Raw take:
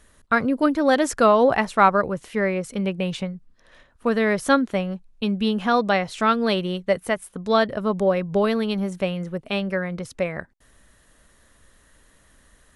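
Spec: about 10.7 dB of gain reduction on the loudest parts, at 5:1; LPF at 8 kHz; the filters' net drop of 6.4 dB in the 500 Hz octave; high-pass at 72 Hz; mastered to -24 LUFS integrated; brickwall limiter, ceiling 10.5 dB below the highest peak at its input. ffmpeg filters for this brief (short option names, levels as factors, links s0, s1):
-af "highpass=72,lowpass=8000,equalizer=f=500:t=o:g=-8,acompressor=threshold=0.0501:ratio=5,volume=3.35,alimiter=limit=0.178:level=0:latency=1"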